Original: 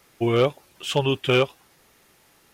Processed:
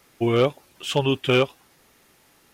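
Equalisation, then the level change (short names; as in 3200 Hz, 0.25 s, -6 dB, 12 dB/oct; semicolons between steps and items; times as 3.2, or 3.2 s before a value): bell 260 Hz +3.5 dB 0.34 oct; 0.0 dB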